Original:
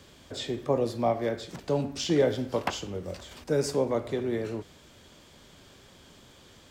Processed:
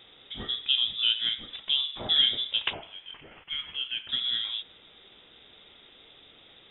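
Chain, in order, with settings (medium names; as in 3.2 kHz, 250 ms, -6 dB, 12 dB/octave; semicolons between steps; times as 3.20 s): 2.73–4.09 s: high-pass 700 Hz 12 dB/octave; frequency inversion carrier 3.7 kHz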